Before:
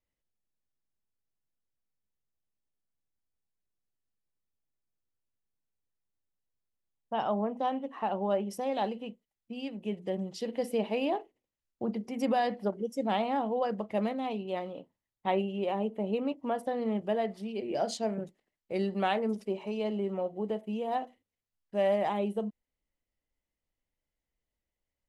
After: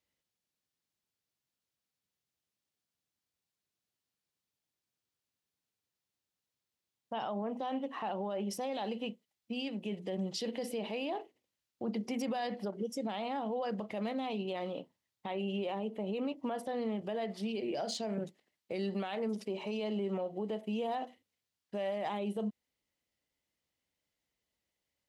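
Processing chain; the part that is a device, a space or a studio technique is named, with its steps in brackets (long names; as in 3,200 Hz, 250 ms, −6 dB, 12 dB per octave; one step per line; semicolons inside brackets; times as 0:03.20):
broadcast voice chain (high-pass filter 93 Hz; de-essing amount 100%; downward compressor, threshold −30 dBFS, peak gain reduction 7 dB; parametric band 4,100 Hz +6 dB 1.7 octaves; brickwall limiter −30 dBFS, peak gain reduction 11 dB)
level +2 dB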